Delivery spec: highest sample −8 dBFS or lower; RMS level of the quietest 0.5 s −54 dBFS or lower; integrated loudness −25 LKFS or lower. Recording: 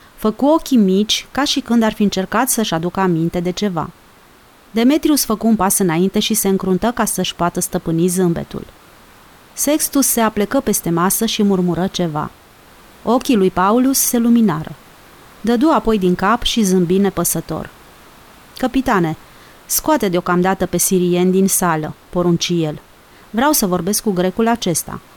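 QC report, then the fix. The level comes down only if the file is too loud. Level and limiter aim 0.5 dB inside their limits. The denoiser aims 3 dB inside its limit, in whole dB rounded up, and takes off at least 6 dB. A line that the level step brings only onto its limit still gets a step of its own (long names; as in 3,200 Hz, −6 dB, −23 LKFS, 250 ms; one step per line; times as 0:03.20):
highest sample −4.5 dBFS: out of spec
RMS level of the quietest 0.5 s −46 dBFS: out of spec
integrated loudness −16.0 LKFS: out of spec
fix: level −9.5 dB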